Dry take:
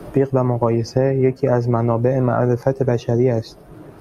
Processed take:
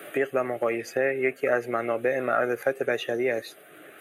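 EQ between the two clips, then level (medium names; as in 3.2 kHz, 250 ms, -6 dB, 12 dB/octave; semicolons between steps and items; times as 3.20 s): high-pass 930 Hz 12 dB/octave; static phaser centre 2.3 kHz, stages 4; band-stop 4.3 kHz, Q 8.6; +8.5 dB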